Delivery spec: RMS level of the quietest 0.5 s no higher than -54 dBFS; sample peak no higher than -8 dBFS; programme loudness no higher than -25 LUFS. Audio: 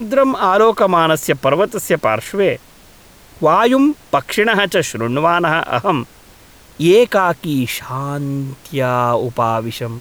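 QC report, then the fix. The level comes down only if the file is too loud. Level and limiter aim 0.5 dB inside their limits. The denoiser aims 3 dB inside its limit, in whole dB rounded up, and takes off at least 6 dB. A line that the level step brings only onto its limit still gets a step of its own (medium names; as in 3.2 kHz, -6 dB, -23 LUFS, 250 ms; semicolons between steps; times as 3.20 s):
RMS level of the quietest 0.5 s -44 dBFS: fail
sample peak -3.0 dBFS: fail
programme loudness -15.5 LUFS: fail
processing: noise reduction 6 dB, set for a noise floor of -44 dBFS; trim -10 dB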